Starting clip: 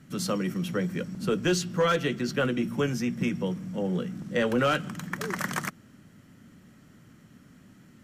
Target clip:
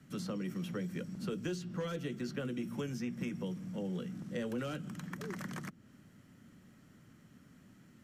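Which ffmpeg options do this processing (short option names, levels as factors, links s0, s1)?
-filter_complex "[0:a]acrossover=split=87|420|2100|5700[s0][s1][s2][s3][s4];[s0]acompressor=threshold=0.00126:ratio=4[s5];[s1]acompressor=threshold=0.0316:ratio=4[s6];[s2]acompressor=threshold=0.00794:ratio=4[s7];[s3]acompressor=threshold=0.00447:ratio=4[s8];[s4]acompressor=threshold=0.00224:ratio=4[s9];[s5][s6][s7][s8][s9]amix=inputs=5:normalize=0,volume=0.501"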